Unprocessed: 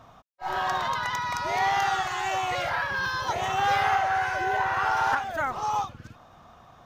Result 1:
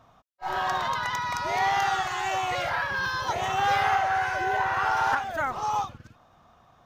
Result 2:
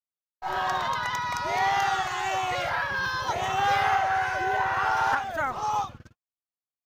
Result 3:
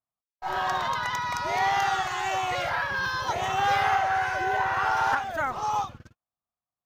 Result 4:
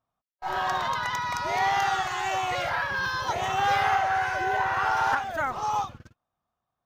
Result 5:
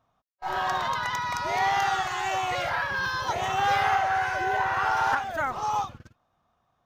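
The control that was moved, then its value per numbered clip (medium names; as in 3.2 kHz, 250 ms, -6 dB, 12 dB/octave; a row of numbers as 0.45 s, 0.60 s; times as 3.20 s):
gate, range: -6 dB, -60 dB, -46 dB, -32 dB, -20 dB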